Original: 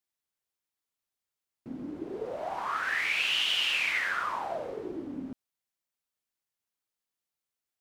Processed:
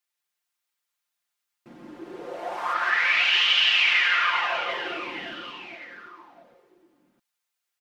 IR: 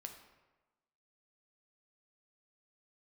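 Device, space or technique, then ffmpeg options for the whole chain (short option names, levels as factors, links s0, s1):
behind a face mask: -filter_complex "[0:a]asettb=1/sr,asplit=3[s0][s1][s2];[s0]atrim=end=2.734[s3];[s1]atrim=start=2.73:end=4.7,asetpts=PTS-STARTPTS,afade=t=in:d=0.004:c=qsin,afade=t=out:st=1.966:d=0.004:c=qsin,lowpass=f=5600:w=0.5412,lowpass=f=5600:w=1.3066[s4];[s2]atrim=start=4.696[s5];[s3][s4]acrossfade=d=0.004:c1=hsin:c2=qsin[s6];[s6][s5]acrossfade=d=0.004:c1=qsin:c2=hsin,tiltshelf=f=650:g=-10,highshelf=f=2600:g=-8,aecho=1:1:5.7:0.65,aecho=1:1:170|408|741.2|1208|1861:0.631|0.398|0.251|0.158|0.1"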